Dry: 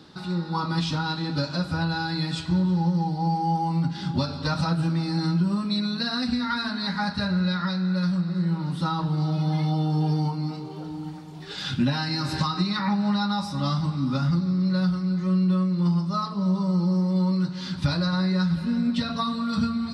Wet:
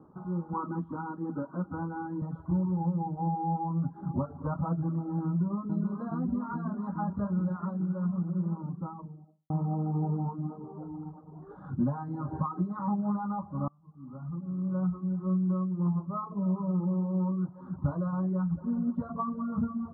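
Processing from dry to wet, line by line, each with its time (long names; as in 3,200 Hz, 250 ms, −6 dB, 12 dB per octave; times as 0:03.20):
0:00.53–0:02.22: loudspeaker in its box 120–3,400 Hz, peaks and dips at 150 Hz −9 dB, 210 Hz +7 dB, 340 Hz +4 dB, 640 Hz −7 dB, 1,500 Hz +4 dB, 2,300 Hz −4 dB
0:05.27–0:05.72: delay throw 420 ms, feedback 85%, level −5.5 dB
0:08.30–0:09.50: fade out and dull
0:13.68–0:14.82: fade in quadratic, from −22 dB
whole clip: elliptic low-pass filter 1,200 Hz, stop band 50 dB; reverb reduction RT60 0.56 s; level −4 dB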